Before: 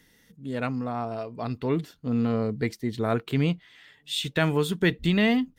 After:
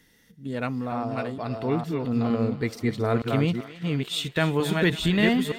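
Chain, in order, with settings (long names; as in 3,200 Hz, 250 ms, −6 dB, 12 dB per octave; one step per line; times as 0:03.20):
delay that plays each chunk backwards 460 ms, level −3 dB
feedback echo with a high-pass in the loop 272 ms, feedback 68%, high-pass 540 Hz, level −14.5 dB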